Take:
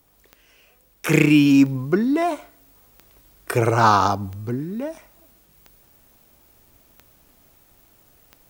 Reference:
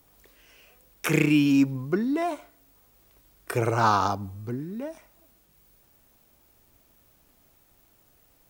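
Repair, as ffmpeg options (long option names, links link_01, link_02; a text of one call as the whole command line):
ffmpeg -i in.wav -af "adeclick=threshold=4,asetnsamples=nb_out_samples=441:pad=0,asendcmd='1.08 volume volume -6dB',volume=0dB" out.wav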